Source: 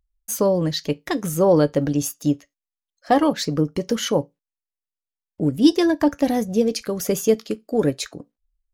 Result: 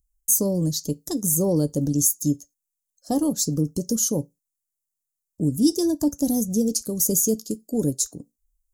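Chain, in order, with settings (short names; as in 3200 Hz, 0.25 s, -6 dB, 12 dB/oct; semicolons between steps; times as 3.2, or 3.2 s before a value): EQ curve 240 Hz 0 dB, 1000 Hz -16 dB, 2200 Hz -30 dB, 6900 Hz +12 dB; in parallel at -1 dB: limiter -14.5 dBFS, peak gain reduction 11 dB; on the sum: gain -5 dB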